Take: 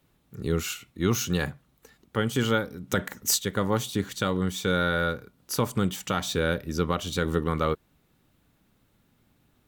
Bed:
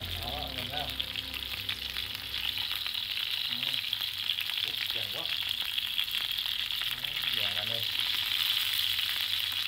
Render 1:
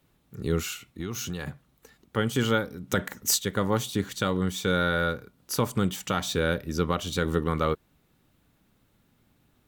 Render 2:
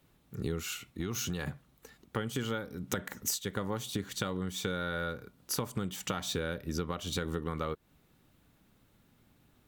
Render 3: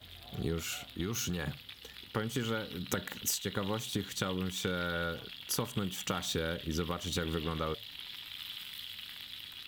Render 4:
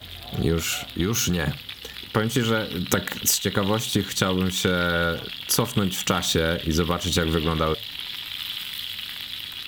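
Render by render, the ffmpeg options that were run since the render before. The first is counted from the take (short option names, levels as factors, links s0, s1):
-filter_complex "[0:a]asettb=1/sr,asplit=3[s0][s1][s2];[s0]atrim=end=0.604[s3];[s1]atrim=start=0.6:end=1.47,asetpts=PTS-STARTPTS,afade=t=in:d=0.004:c=qsin,afade=t=out:st=0.866:d=0.004:c=qsin,acompressor=threshold=0.0355:ratio=6:attack=3.2:release=140:knee=1:detection=peak[s4];[s2]atrim=start=1.466[s5];[s3][s4]acrossfade=d=0.004:c1=hsin:c2=qsin[s6];[s6][s5]acrossfade=d=0.004:c1=qsin:c2=hsin"
-af "acompressor=threshold=0.0316:ratio=10"
-filter_complex "[1:a]volume=0.178[s0];[0:a][s0]amix=inputs=2:normalize=0"
-af "volume=3.98"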